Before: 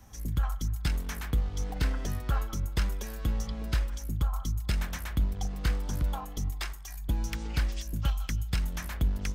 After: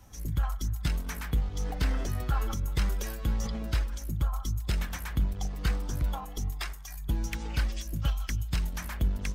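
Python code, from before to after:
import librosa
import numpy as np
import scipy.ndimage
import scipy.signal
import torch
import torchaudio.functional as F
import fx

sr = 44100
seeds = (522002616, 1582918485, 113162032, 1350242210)

y = fx.spec_quant(x, sr, step_db=15)
y = fx.sustainer(y, sr, db_per_s=38.0, at=(1.6, 3.67))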